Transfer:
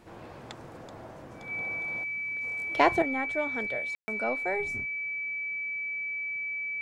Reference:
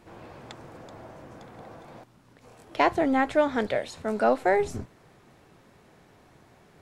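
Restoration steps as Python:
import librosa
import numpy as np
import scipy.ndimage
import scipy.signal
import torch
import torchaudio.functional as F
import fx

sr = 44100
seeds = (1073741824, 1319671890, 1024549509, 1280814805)

y = fx.notch(x, sr, hz=2300.0, q=30.0)
y = fx.fix_ambience(y, sr, seeds[0], print_start_s=0.0, print_end_s=0.5, start_s=3.95, end_s=4.08)
y = fx.fix_level(y, sr, at_s=3.02, step_db=9.5)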